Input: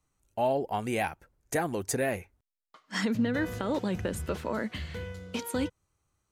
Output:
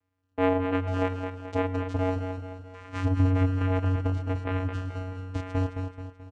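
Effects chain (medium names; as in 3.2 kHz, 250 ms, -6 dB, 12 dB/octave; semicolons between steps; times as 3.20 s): 1.86–3.28 s: one-bit delta coder 64 kbps, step -41 dBFS; peaking EQ 950 Hz +10 dB 1.3 oct; vocoder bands 4, square 92.9 Hz; feedback delay 216 ms, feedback 47%, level -7 dB; reverberation RT60 0.35 s, pre-delay 112 ms, DRR 17 dB; trim -1 dB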